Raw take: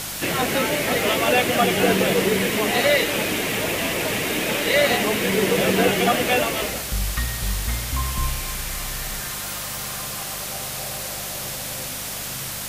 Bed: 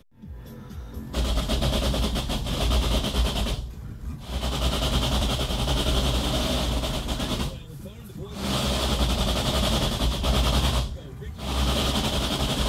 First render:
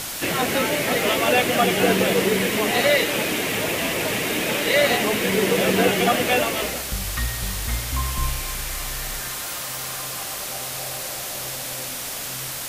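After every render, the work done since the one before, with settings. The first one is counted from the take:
hum removal 50 Hz, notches 4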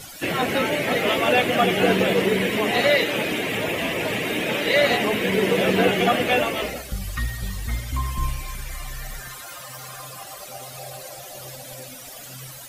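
broadband denoise 15 dB, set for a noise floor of −31 dBFS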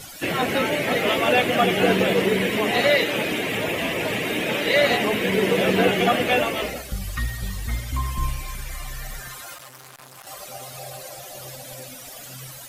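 0:09.54–0:10.27: saturating transformer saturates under 3,000 Hz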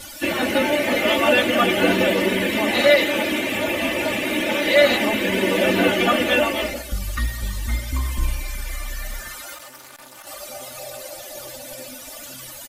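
comb filter 3.4 ms, depth 83%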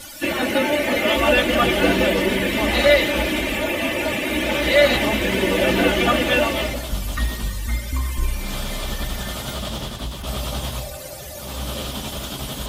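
mix in bed −5 dB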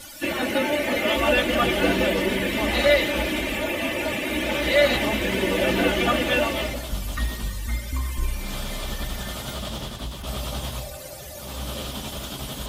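level −3.5 dB

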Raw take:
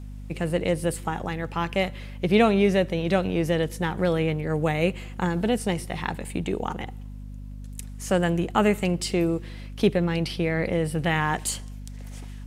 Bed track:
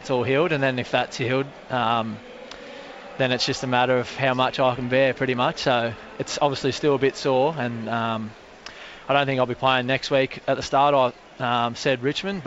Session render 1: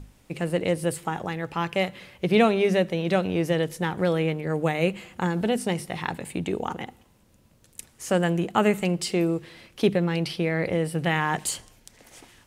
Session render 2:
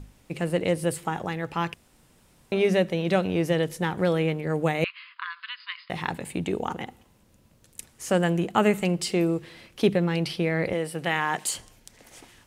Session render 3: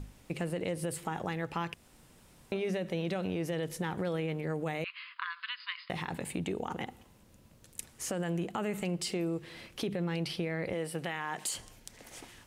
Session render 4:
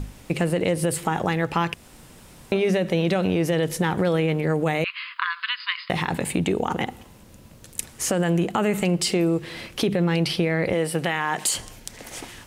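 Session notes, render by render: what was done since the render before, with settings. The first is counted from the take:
mains-hum notches 50/100/150/200/250 Hz
0:01.74–0:02.52: fill with room tone; 0:04.84–0:05.90: linear-phase brick-wall band-pass 970–5,100 Hz; 0:10.73–0:11.55: high-pass filter 370 Hz 6 dB per octave
brickwall limiter −19 dBFS, peak gain reduction 10.5 dB; downward compressor 2 to 1, threshold −35 dBFS, peak gain reduction 7 dB
level +12 dB

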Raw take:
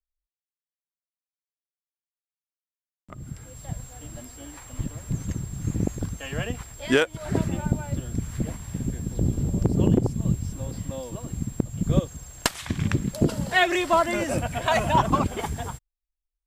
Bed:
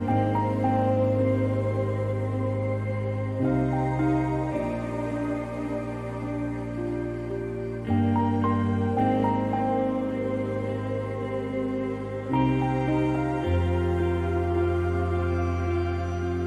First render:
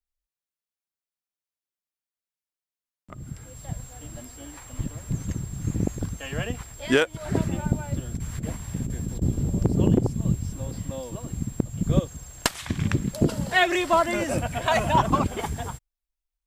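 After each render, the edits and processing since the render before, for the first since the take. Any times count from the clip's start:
0:08.16–0:09.22: compressor whose output falls as the input rises −28 dBFS, ratio −0.5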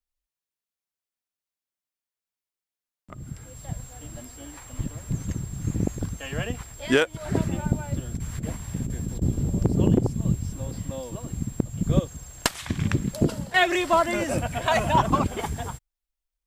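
0:13.14–0:13.54: fade out equal-power, to −11 dB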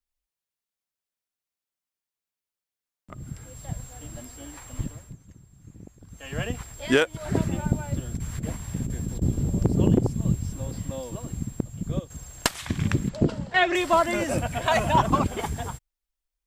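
0:04.80–0:06.42: duck −20 dB, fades 0.36 s
0:11.21–0:12.10: fade out, to −10 dB
0:13.09–0:13.75: high-frequency loss of the air 110 metres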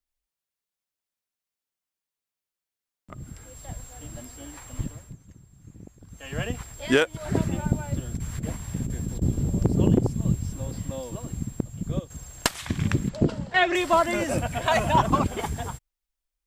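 0:03.24–0:03.98: parametric band 140 Hz −8.5 dB 0.94 octaves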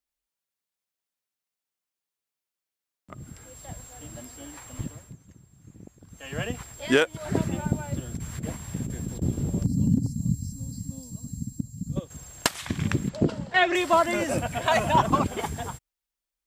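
0:09.64–0:11.96: gain on a spectral selection 290–3,900 Hz −20 dB
high-pass filter 100 Hz 6 dB per octave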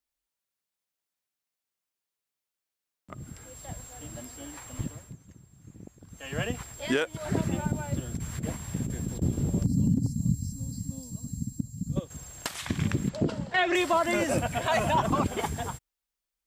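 brickwall limiter −15.5 dBFS, peak gain reduction 11 dB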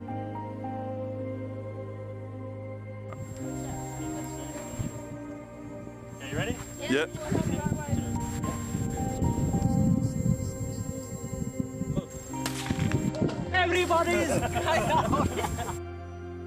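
mix in bed −11.5 dB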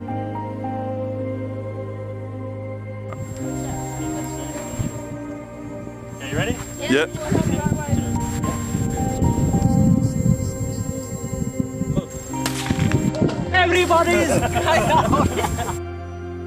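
level +8.5 dB

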